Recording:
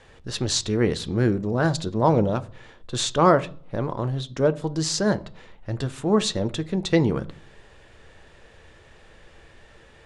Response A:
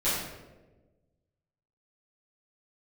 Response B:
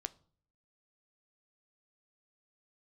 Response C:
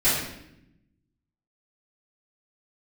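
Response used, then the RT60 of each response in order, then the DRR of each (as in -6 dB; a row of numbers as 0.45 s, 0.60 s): B; 1.2 s, 0.50 s, 0.80 s; -13.5 dB, 12.0 dB, -13.5 dB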